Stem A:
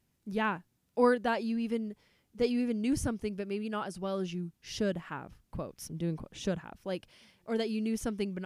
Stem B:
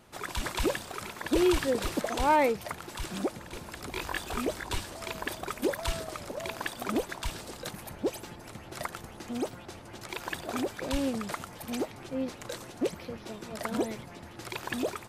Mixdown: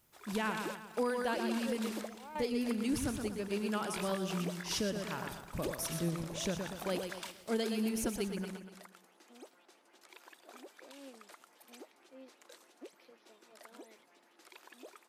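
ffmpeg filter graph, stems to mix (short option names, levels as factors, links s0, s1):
-filter_complex "[0:a]aemphasis=mode=production:type=50kf,deesser=0.55,volume=0.891,asplit=3[s0][s1][s2];[s1]volume=0.473[s3];[1:a]highpass=f=300:w=0.5412,highpass=f=300:w=1.3066,equalizer=f=520:t=o:w=2:g=-3.5,alimiter=level_in=1.12:limit=0.0631:level=0:latency=1:release=149,volume=0.891,volume=0.596[s4];[s2]apad=whole_len=665164[s5];[s4][s5]sidechaingate=range=0.282:threshold=0.00141:ratio=16:detection=peak[s6];[s3]aecho=0:1:120|240|360|480|600|720:1|0.45|0.202|0.0911|0.041|0.0185[s7];[s0][s6][s7]amix=inputs=3:normalize=0,alimiter=limit=0.0631:level=0:latency=1:release=415"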